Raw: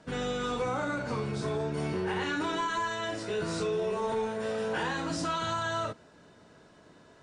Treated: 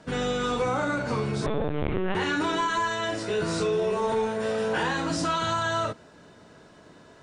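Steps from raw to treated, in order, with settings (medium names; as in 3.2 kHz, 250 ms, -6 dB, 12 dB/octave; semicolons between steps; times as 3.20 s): 1.46–2.15 s: LPC vocoder at 8 kHz pitch kept; trim +5 dB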